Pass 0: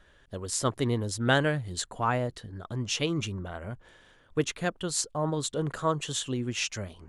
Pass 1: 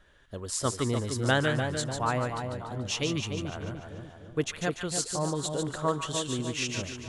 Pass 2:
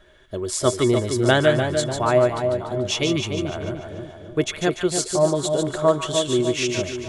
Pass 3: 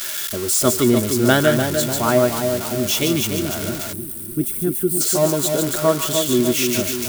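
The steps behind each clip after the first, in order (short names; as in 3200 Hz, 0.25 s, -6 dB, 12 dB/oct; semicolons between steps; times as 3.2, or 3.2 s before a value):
split-band echo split 1000 Hz, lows 0.298 s, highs 0.146 s, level -5.5 dB; gain -1.5 dB
small resonant body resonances 370/620/2200/3400 Hz, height 14 dB, ringing for 0.1 s; gain +5.5 dB
switching spikes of -14.5 dBFS; small resonant body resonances 230/1400 Hz, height 10 dB, ringing for 45 ms; spectral gain 3.93–5.01, 430–8000 Hz -18 dB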